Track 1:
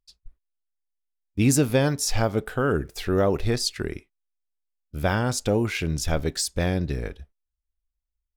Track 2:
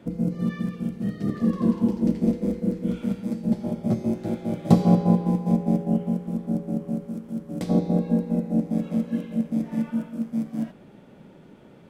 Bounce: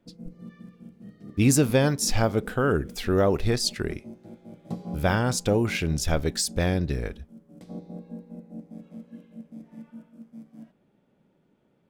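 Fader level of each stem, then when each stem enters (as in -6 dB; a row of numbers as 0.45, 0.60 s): 0.0, -17.5 dB; 0.00, 0.00 s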